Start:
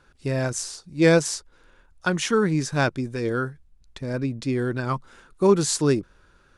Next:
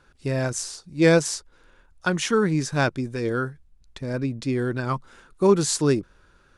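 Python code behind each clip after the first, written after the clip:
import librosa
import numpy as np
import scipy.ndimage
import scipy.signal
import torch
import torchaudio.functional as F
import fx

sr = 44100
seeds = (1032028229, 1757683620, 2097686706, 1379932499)

y = x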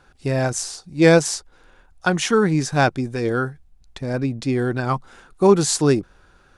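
y = fx.peak_eq(x, sr, hz=760.0, db=9.0, octaves=0.21)
y = F.gain(torch.from_numpy(y), 3.5).numpy()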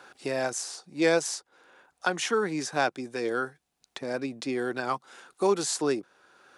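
y = scipy.signal.sosfilt(scipy.signal.butter(2, 340.0, 'highpass', fs=sr, output='sos'), x)
y = fx.band_squash(y, sr, depth_pct=40)
y = F.gain(torch.from_numpy(y), -6.0).numpy()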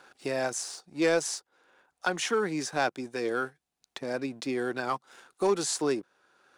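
y = fx.leveller(x, sr, passes=1)
y = F.gain(torch.from_numpy(y), -4.5).numpy()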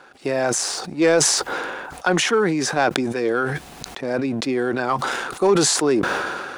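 y = fx.high_shelf(x, sr, hz=3700.0, db=-8.5)
y = fx.sustainer(y, sr, db_per_s=28.0)
y = F.gain(torch.from_numpy(y), 8.5).numpy()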